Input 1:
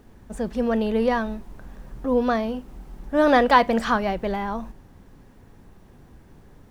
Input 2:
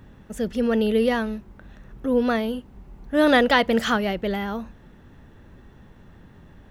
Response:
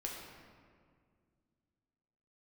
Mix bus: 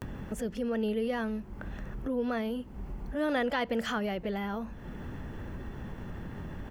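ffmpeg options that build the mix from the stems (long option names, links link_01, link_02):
-filter_complex "[0:a]acompressor=threshold=-24dB:ratio=6,volume=-17.5dB,asplit=2[link_01][link_02];[1:a]equalizer=frequency=6700:width=0.44:gain=-3,bandreject=frequency=3800:width=9.1,acompressor=mode=upward:threshold=-29dB:ratio=2.5,adelay=19,volume=-0.5dB[link_03];[link_02]apad=whole_len=296691[link_04];[link_03][link_04]sidechaincompress=threshold=-48dB:ratio=8:attack=33:release=271[link_05];[link_01][link_05]amix=inputs=2:normalize=0,acompressor=threshold=-33dB:ratio=1.5"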